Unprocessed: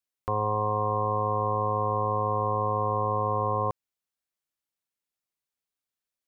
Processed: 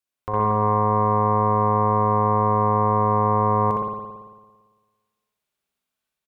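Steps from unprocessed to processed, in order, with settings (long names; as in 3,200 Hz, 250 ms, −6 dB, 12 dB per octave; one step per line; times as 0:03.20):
ambience of single reflections 41 ms −15.5 dB, 61 ms −6 dB
spring reverb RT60 1.4 s, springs 56 ms, chirp 30 ms, DRR −4 dB
harmonic generator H 2 −18 dB, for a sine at −8 dBFS
automatic gain control gain up to 4 dB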